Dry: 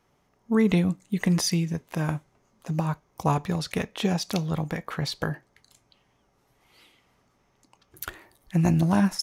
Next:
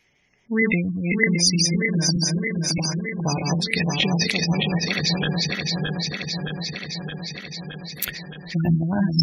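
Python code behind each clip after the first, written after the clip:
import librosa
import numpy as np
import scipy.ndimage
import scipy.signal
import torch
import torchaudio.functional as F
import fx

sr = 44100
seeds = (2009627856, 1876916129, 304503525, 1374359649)

y = fx.reverse_delay_fb(x, sr, ms=309, feedback_pct=84, wet_db=-2)
y = fx.spec_gate(y, sr, threshold_db=-25, keep='strong')
y = fx.high_shelf_res(y, sr, hz=1600.0, db=9.5, q=3.0)
y = F.gain(torch.from_numpy(y), -1.0).numpy()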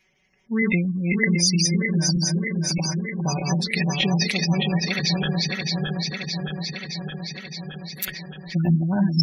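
y = x + 0.73 * np.pad(x, (int(5.3 * sr / 1000.0), 0))[:len(x)]
y = F.gain(torch.from_numpy(y), -3.5).numpy()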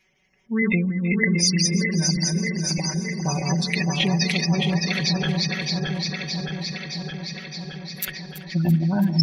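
y = fx.echo_alternate(x, sr, ms=166, hz=1100.0, feedback_pct=86, wet_db=-13)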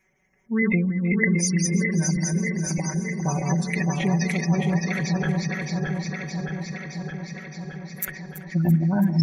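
y = fx.band_shelf(x, sr, hz=3700.0, db=-15.0, octaves=1.2)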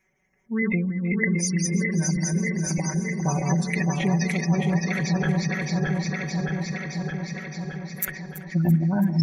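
y = fx.rider(x, sr, range_db=3, speed_s=2.0)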